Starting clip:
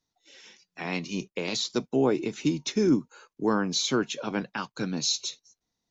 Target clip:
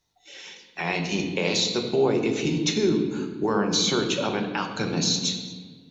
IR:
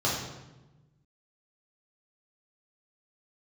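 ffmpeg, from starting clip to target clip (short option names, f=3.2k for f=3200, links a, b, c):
-filter_complex "[0:a]alimiter=limit=-21.5dB:level=0:latency=1:release=192,asplit=2[a][b];[1:a]atrim=start_sample=2205,asetrate=27342,aresample=44100,highshelf=f=6.9k:g=11[c];[b][c]afir=irnorm=-1:irlink=0,volume=-17dB[d];[a][d]amix=inputs=2:normalize=0,volume=6dB"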